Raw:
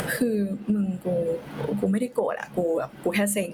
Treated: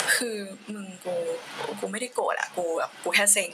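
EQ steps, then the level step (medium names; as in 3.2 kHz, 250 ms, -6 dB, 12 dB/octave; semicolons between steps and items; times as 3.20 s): frequency weighting ITU-R 468; dynamic bell 870 Hz, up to +6 dB, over -44 dBFS, Q 1.1; 0.0 dB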